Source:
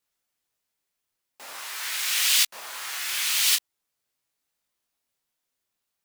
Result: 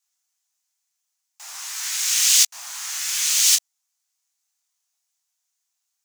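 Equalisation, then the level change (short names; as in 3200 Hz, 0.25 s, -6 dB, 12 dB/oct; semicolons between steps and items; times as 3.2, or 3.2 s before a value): steep high-pass 670 Hz 72 dB/oct; bell 6500 Hz +13.5 dB 0.91 oct; high shelf 11000 Hz +4 dB; -3.0 dB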